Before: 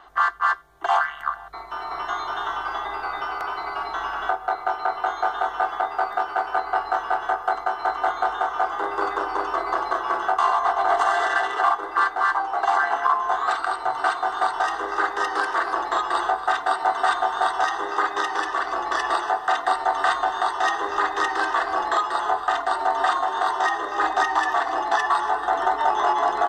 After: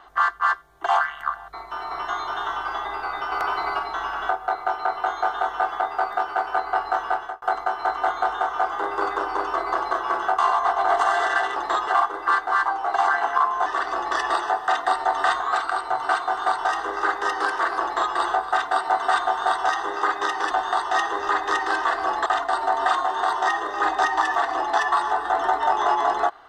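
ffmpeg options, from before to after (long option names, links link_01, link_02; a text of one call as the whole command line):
ffmpeg -i in.wav -filter_complex "[0:a]asplit=10[link_01][link_02][link_03][link_04][link_05][link_06][link_07][link_08][link_09][link_10];[link_01]atrim=end=3.322[link_11];[link_02]atrim=start=3.318:end=3.792,asetpts=PTS-STARTPTS,volume=4dB[link_12];[link_03]atrim=start=3.788:end=7.42,asetpts=PTS-STARTPTS,afade=type=out:start_time=3.322:duration=0.31[link_13];[link_04]atrim=start=7.42:end=11.562,asetpts=PTS-STARTPTS,afade=type=in:duration=0.004:curve=hsin[link_14];[link_05]atrim=start=15.778:end=16.092[link_15];[link_06]atrim=start=11.558:end=13.352[link_16];[link_07]atrim=start=18.458:end=20.202[link_17];[link_08]atrim=start=13.348:end=18.462[link_18];[link_09]atrim=start=20.198:end=21.952[link_19];[link_10]atrim=start=22.438[link_20];[link_11][link_12]acrossfade=duration=0.004:curve1=hsin:curve2=hsin[link_21];[link_13][link_14]concat=n=2:v=0:a=1[link_22];[link_21][link_22]acrossfade=duration=0.004:curve1=hsin:curve2=hsin[link_23];[link_23][link_15]acrossfade=duration=0.004:curve1=hsin:curve2=hsin[link_24];[link_24][link_16]acrossfade=duration=0.004:curve1=hsin:curve2=hsin[link_25];[link_25][link_17]acrossfade=duration=0.004:curve1=hsin:curve2=hsin[link_26];[link_26][link_18]acrossfade=duration=0.004:curve1=hsin:curve2=hsin[link_27];[link_27][link_19]acrossfade=duration=0.004:curve1=hsin:curve2=hsin[link_28];[link_28][link_20]acrossfade=duration=0.004:curve1=hsin:curve2=hsin" out.wav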